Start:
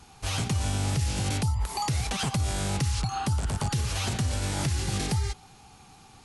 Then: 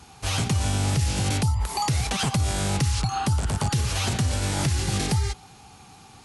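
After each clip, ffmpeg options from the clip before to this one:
ffmpeg -i in.wav -af "highpass=45,volume=4dB" out.wav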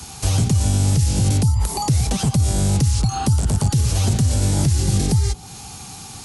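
ffmpeg -i in.wav -filter_complex "[0:a]bass=frequency=250:gain=5,treble=frequency=4000:gain=12,acrossover=split=110|720[link_01][link_02][link_03];[link_01]acompressor=threshold=-26dB:ratio=4[link_04];[link_02]acompressor=threshold=-28dB:ratio=4[link_05];[link_03]acompressor=threshold=-37dB:ratio=4[link_06];[link_04][link_05][link_06]amix=inputs=3:normalize=0,volume=7.5dB" out.wav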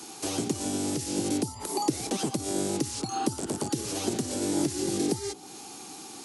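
ffmpeg -i in.wav -af "highpass=frequency=320:width_type=q:width=3.9,volume=-7dB" out.wav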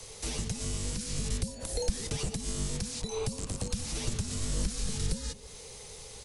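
ffmpeg -i in.wav -filter_complex "[0:a]afreqshift=-340,asplit=2[link_01][link_02];[link_02]adelay=204.1,volume=-18dB,highshelf=frequency=4000:gain=-4.59[link_03];[link_01][link_03]amix=inputs=2:normalize=0,volume=-3dB" out.wav

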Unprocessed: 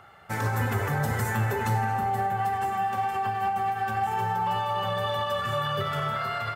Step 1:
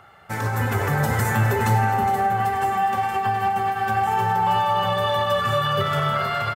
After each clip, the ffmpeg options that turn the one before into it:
ffmpeg -i in.wav -filter_complex "[0:a]asplit=2[link_01][link_02];[link_02]aecho=0:1:414:0.299[link_03];[link_01][link_03]amix=inputs=2:normalize=0,dynaudnorm=framelen=480:gausssize=3:maxgain=4dB,volume=2dB" out.wav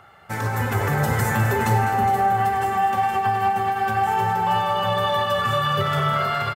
ffmpeg -i in.wav -af "aecho=1:1:203:0.299" out.wav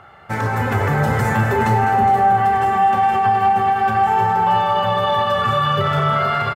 ffmpeg -i in.wav -filter_complex "[0:a]lowpass=frequency=2800:poles=1,asplit=2[link_01][link_02];[link_02]alimiter=limit=-17.5dB:level=0:latency=1,volume=-0.5dB[link_03];[link_01][link_03]amix=inputs=2:normalize=0,asplit=2[link_04][link_05];[link_05]adelay=32,volume=-11dB[link_06];[link_04][link_06]amix=inputs=2:normalize=0" out.wav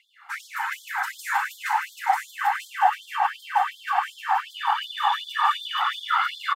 ffmpeg -i in.wav -af "afftfilt=real='hypot(re,im)*cos(2*PI*random(0))':imag='hypot(re,im)*sin(2*PI*random(1))':win_size=512:overlap=0.75,aecho=1:1:940:0.631,afftfilt=real='re*gte(b*sr/1024,720*pow(3200/720,0.5+0.5*sin(2*PI*2.7*pts/sr)))':imag='im*gte(b*sr/1024,720*pow(3200/720,0.5+0.5*sin(2*PI*2.7*pts/sr)))':win_size=1024:overlap=0.75,volume=3.5dB" out.wav

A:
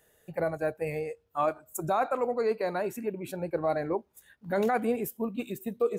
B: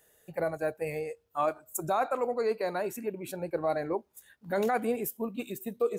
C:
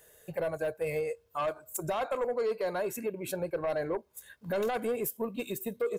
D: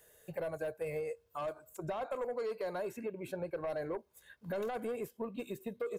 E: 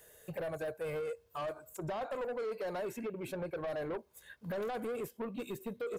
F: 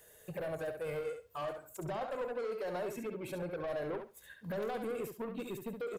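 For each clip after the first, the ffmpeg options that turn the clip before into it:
ffmpeg -i in.wav -af "bass=frequency=250:gain=-3,treble=frequency=4000:gain=4,volume=-1dB" out.wav
ffmpeg -i in.wav -af "aeval=exprs='0.133*sin(PI/2*1.58*val(0)/0.133)':channel_layout=same,aecho=1:1:1.9:0.34,alimiter=limit=-21.5dB:level=0:latency=1:release=305,volume=-3dB" out.wav
ffmpeg -i in.wav -filter_complex "[0:a]acrossover=split=840|2000|4800[link_01][link_02][link_03][link_04];[link_01]acompressor=threshold=-31dB:ratio=4[link_05];[link_02]acompressor=threshold=-42dB:ratio=4[link_06];[link_03]acompressor=threshold=-54dB:ratio=4[link_07];[link_04]acompressor=threshold=-57dB:ratio=4[link_08];[link_05][link_06][link_07][link_08]amix=inputs=4:normalize=0,volume=-4dB" out.wav
ffmpeg -i in.wav -af "asoftclip=type=tanh:threshold=-37.5dB,volume=4dB" out.wav
ffmpeg -i in.wav -af "aecho=1:1:68|136|204:0.447|0.0804|0.0145,volume=-1dB" out.wav

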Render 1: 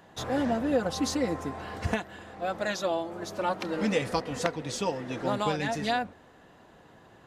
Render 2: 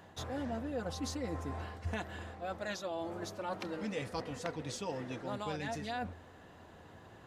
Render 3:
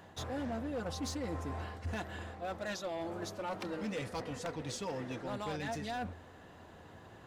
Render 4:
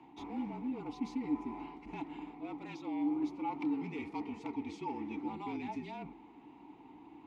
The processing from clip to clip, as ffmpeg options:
ffmpeg -i in.wav -af "equalizer=frequency=86:width=3.6:gain=11.5,areverse,acompressor=threshold=-36dB:ratio=4,areverse,volume=-1dB" out.wav
ffmpeg -i in.wav -af "asoftclip=type=hard:threshold=-34dB,volume=1dB" out.wav
ffmpeg -i in.wav -filter_complex "[0:a]afreqshift=-39,asplit=3[link_01][link_02][link_03];[link_01]bandpass=frequency=300:width_type=q:width=8,volume=0dB[link_04];[link_02]bandpass=frequency=870:width_type=q:width=8,volume=-6dB[link_05];[link_03]bandpass=frequency=2240:width_type=q:width=8,volume=-9dB[link_06];[link_04][link_05][link_06]amix=inputs=3:normalize=0,volume=12dB" out.wav

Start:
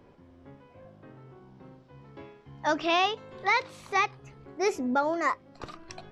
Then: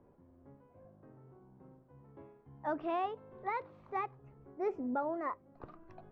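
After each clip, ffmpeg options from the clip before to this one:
ffmpeg -i in.wav -af "lowpass=1100,volume=-7.5dB" out.wav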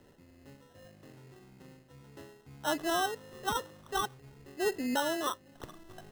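ffmpeg -i in.wav -af "acrusher=samples=19:mix=1:aa=0.000001,volume=4dB" out.wav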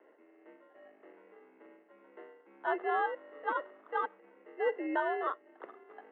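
ffmpeg -i in.wav -af "highpass=frequency=250:width_type=q:width=0.5412,highpass=frequency=250:width_type=q:width=1.307,lowpass=frequency=2300:width_type=q:width=0.5176,lowpass=frequency=2300:width_type=q:width=0.7071,lowpass=frequency=2300:width_type=q:width=1.932,afreqshift=64" out.wav

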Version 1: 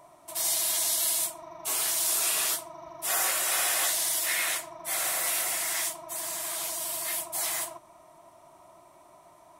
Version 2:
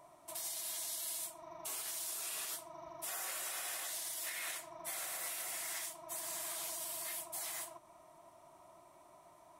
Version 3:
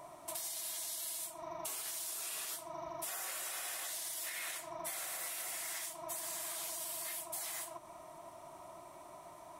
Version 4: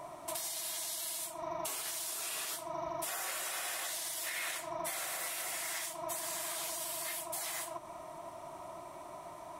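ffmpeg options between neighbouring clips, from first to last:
ffmpeg -i in.wav -af "alimiter=level_in=1.5dB:limit=-24dB:level=0:latency=1:release=272,volume=-1.5dB,volume=-6dB" out.wav
ffmpeg -i in.wav -af "acompressor=threshold=-48dB:ratio=4,volume=8dB" out.wav
ffmpeg -i in.wav -af "highshelf=frequency=6100:gain=-5,volume=5.5dB" out.wav

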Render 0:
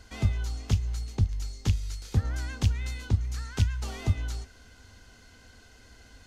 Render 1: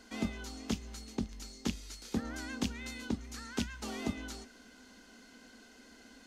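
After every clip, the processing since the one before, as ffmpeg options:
ffmpeg -i in.wav -af "lowshelf=frequency=160:width_type=q:width=3:gain=-13,volume=-2dB" out.wav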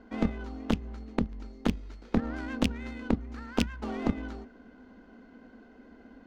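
ffmpeg -i in.wav -af "adynamicsmooth=sensitivity=5:basefreq=1100,aeval=exprs='0.106*(cos(1*acos(clip(val(0)/0.106,-1,1)))-cos(1*PI/2))+0.0422*(cos(2*acos(clip(val(0)/0.106,-1,1)))-cos(2*PI/2))':channel_layout=same,volume=7dB" out.wav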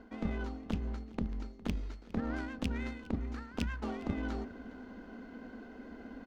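ffmpeg -i in.wav -af "areverse,acompressor=threshold=-37dB:ratio=6,areverse,aecho=1:1:409:0.0944,volume=4.5dB" out.wav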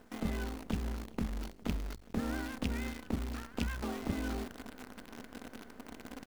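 ffmpeg -i in.wav -af "acrusher=bits=8:dc=4:mix=0:aa=0.000001" out.wav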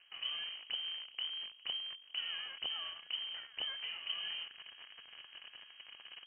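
ffmpeg -i in.wav -af "lowpass=frequency=2700:width_type=q:width=0.5098,lowpass=frequency=2700:width_type=q:width=0.6013,lowpass=frequency=2700:width_type=q:width=0.9,lowpass=frequency=2700:width_type=q:width=2.563,afreqshift=-3200,volume=-5.5dB" out.wav

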